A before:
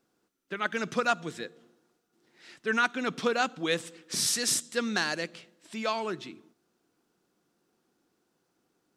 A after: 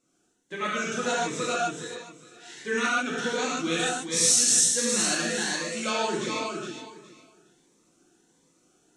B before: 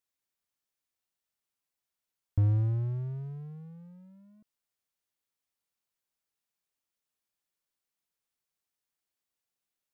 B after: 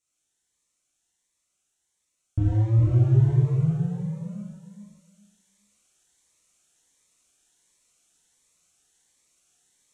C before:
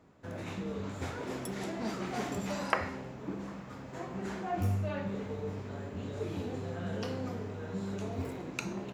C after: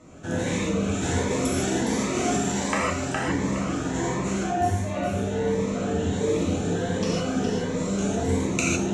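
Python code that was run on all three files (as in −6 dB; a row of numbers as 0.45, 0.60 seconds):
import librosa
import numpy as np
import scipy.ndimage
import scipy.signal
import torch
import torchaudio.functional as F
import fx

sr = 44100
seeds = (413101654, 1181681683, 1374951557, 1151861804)

y = fx.peak_eq(x, sr, hz=4800.0, db=-10.0, octaves=0.79)
y = fx.echo_feedback(y, sr, ms=414, feedback_pct=21, wet_db=-7.0)
y = fx.rider(y, sr, range_db=5, speed_s=0.5)
y = scipy.signal.sosfilt(scipy.signal.butter(4, 7600.0, 'lowpass', fs=sr, output='sos'), y)
y = fx.bass_treble(y, sr, bass_db=-1, treble_db=15)
y = fx.notch(y, sr, hz=4800.0, q=16.0)
y = fx.rev_gated(y, sr, seeds[0], gate_ms=180, shape='flat', drr_db=-6.0)
y = fx.notch_cascade(y, sr, direction='rising', hz=1.4)
y = librosa.util.normalize(y) * 10.0 ** (-9 / 20.0)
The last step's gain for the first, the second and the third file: −2.5, +7.0, +6.0 decibels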